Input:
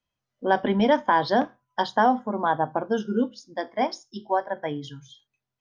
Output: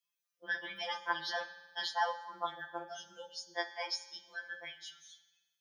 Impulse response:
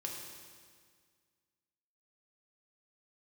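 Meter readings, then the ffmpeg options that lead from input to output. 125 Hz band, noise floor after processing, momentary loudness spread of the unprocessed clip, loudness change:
-30.0 dB, under -85 dBFS, 11 LU, -14.0 dB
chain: -filter_complex "[0:a]aderivative,asplit=2[a][b];[1:a]atrim=start_sample=2205,asetrate=66150,aresample=44100,lowpass=4.9k[c];[b][c]afir=irnorm=-1:irlink=0,volume=-1dB[d];[a][d]amix=inputs=2:normalize=0,afftfilt=real='re*2.83*eq(mod(b,8),0)':imag='im*2.83*eq(mod(b,8),0)':win_size=2048:overlap=0.75,volume=4.5dB"

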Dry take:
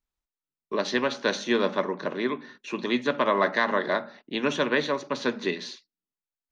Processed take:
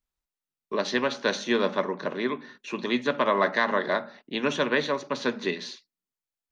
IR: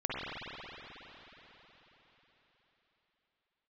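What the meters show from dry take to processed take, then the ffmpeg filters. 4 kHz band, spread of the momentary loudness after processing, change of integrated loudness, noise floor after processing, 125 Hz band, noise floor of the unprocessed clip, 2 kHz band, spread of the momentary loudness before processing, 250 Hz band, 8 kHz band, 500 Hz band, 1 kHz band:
0.0 dB, 11 LU, 0.0 dB, under -85 dBFS, 0.0 dB, under -85 dBFS, 0.0 dB, 10 LU, -0.5 dB, n/a, 0.0 dB, 0.0 dB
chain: -af "equalizer=f=320:t=o:w=0.26:g=-3"

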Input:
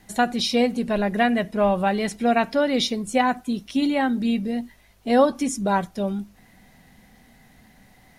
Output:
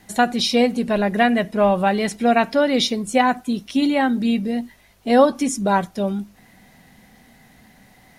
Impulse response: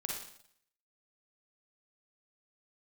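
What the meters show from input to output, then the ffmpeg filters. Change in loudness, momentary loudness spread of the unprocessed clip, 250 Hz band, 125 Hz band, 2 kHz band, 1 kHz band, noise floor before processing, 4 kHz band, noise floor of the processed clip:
+3.0 dB, 8 LU, +3.0 dB, +2.5 dB, +3.5 dB, +3.5 dB, -55 dBFS, +3.5 dB, -53 dBFS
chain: -af "lowshelf=f=63:g=-8,volume=3.5dB"

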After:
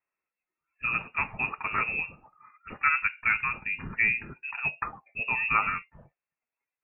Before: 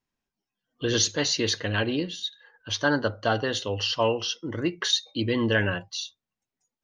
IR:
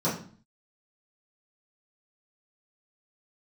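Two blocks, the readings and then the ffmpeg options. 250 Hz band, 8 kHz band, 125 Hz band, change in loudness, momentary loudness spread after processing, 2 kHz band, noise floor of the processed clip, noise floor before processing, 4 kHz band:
-17.5 dB, under -40 dB, -14.0 dB, -1.5 dB, 11 LU, +3.5 dB, under -85 dBFS, under -85 dBFS, under -25 dB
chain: -af "highpass=200,aemphasis=mode=production:type=bsi,lowpass=f=2.5k:t=q:w=0.5098,lowpass=f=2.5k:t=q:w=0.6013,lowpass=f=2.5k:t=q:w=0.9,lowpass=f=2.5k:t=q:w=2.563,afreqshift=-2900"

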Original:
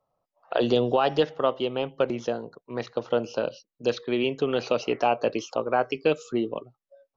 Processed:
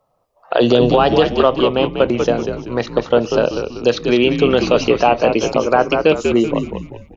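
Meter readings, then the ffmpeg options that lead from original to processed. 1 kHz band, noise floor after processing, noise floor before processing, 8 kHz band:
+10.0 dB, -64 dBFS, under -85 dBFS, n/a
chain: -filter_complex "[0:a]asplit=6[a][b][c][d][e][f];[b]adelay=192,afreqshift=-80,volume=-7dB[g];[c]adelay=384,afreqshift=-160,volume=-15dB[h];[d]adelay=576,afreqshift=-240,volume=-22.9dB[i];[e]adelay=768,afreqshift=-320,volume=-30.9dB[j];[f]adelay=960,afreqshift=-400,volume=-38.8dB[k];[a][g][h][i][j][k]amix=inputs=6:normalize=0,alimiter=level_in=12.5dB:limit=-1dB:release=50:level=0:latency=1,volume=-1dB"

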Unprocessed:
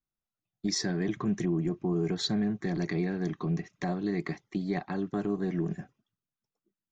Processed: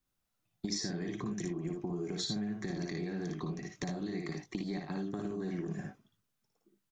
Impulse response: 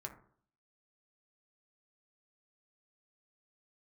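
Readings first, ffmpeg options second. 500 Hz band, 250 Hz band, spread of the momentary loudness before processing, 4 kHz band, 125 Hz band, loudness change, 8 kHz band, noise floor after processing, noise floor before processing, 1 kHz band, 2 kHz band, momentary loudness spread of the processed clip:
-6.5 dB, -6.5 dB, 6 LU, -4.5 dB, -7.0 dB, -6.5 dB, n/a, -82 dBFS, under -85 dBFS, -7.0 dB, -6.0 dB, 5 LU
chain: -filter_complex "[0:a]acompressor=threshold=-33dB:ratio=6,asplit=2[a][b];[b]aecho=0:1:57|77:0.668|0.316[c];[a][c]amix=inputs=2:normalize=0,acrossover=split=480|4200[d][e][f];[d]acompressor=threshold=-44dB:ratio=4[g];[e]acompressor=threshold=-55dB:ratio=4[h];[f]acompressor=threshold=-45dB:ratio=4[i];[g][h][i]amix=inputs=3:normalize=0,volume=7dB"

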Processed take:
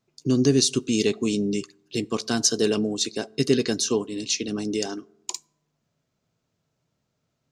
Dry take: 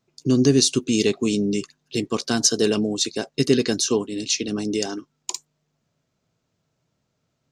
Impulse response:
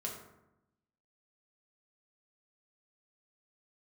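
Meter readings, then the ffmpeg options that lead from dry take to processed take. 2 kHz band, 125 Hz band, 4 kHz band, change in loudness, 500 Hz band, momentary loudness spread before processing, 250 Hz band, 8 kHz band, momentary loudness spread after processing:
-2.5 dB, -2.5 dB, -2.5 dB, -2.5 dB, -2.0 dB, 12 LU, -2.5 dB, -2.5 dB, 12 LU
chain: -filter_complex "[0:a]asplit=2[a][b];[1:a]atrim=start_sample=2205[c];[b][c]afir=irnorm=-1:irlink=0,volume=-22dB[d];[a][d]amix=inputs=2:normalize=0,volume=-3dB"

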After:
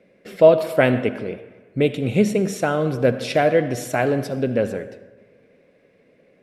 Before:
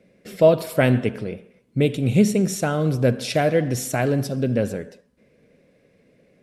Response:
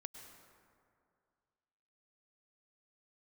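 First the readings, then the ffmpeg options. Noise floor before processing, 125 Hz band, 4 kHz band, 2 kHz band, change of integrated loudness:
-61 dBFS, -4.0 dB, -0.5 dB, +3.0 dB, +1.0 dB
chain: -filter_complex "[0:a]bass=f=250:g=-8,treble=f=4k:g=-9,asplit=2[a][b];[1:a]atrim=start_sample=2205,asetrate=70560,aresample=44100[c];[b][c]afir=irnorm=-1:irlink=0,volume=3dB[d];[a][d]amix=inputs=2:normalize=0"

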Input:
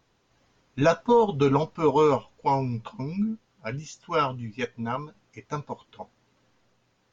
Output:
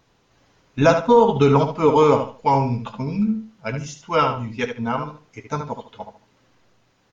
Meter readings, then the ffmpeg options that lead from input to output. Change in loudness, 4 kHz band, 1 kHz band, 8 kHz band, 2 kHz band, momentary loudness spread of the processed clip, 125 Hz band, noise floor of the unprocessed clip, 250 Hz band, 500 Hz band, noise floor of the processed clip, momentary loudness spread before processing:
+6.0 dB, +6.0 dB, +6.5 dB, n/a, +6.0 dB, 17 LU, +7.0 dB, -69 dBFS, +6.5 dB, +6.0 dB, -63 dBFS, 16 LU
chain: -filter_complex "[0:a]asplit=2[a][b];[b]adelay=73,lowpass=f=4.1k:p=1,volume=-7dB,asplit=2[c][d];[d]adelay=73,lowpass=f=4.1k:p=1,volume=0.26,asplit=2[e][f];[f]adelay=73,lowpass=f=4.1k:p=1,volume=0.26[g];[a][c][e][g]amix=inputs=4:normalize=0,volume=5.5dB"

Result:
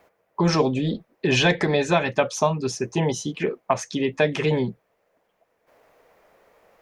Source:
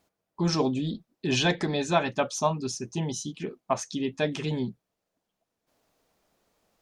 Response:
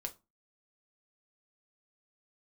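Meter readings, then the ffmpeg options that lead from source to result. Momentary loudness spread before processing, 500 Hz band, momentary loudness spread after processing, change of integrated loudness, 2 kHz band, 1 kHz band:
9 LU, +7.0 dB, 8 LU, +5.5 dB, +7.5 dB, +4.5 dB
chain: -filter_complex "[0:a]acrossover=split=240|3000[a][b][c];[b]acompressor=threshold=-35dB:ratio=6[d];[a][d][c]amix=inputs=3:normalize=0,equalizer=f=250:t=o:w=1:g=-3,equalizer=f=500:t=o:w=1:g=11,equalizer=f=1k:t=o:w=1:g=5,equalizer=f=2k:t=o:w=1:g=10,equalizer=f=4k:t=o:w=1:g=-4,equalizer=f=8k:t=o:w=1:g=-5,volume=6.5dB"

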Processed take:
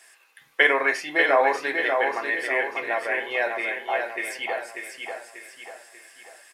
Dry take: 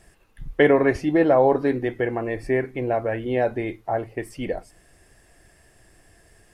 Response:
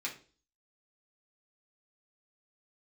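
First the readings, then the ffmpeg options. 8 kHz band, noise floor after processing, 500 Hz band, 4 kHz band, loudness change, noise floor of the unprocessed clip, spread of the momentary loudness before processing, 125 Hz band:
n/a, -58 dBFS, -5.5 dB, +9.0 dB, -1.0 dB, -57 dBFS, 14 LU, under -25 dB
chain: -filter_complex "[0:a]highpass=1.1k,aecho=1:1:590|1180|1770|2360|2950:0.562|0.247|0.109|0.0479|0.0211,asplit=2[a][b];[1:a]atrim=start_sample=2205,atrim=end_sample=4410[c];[b][c]afir=irnorm=-1:irlink=0,volume=-3dB[d];[a][d]amix=inputs=2:normalize=0,volume=3.5dB"

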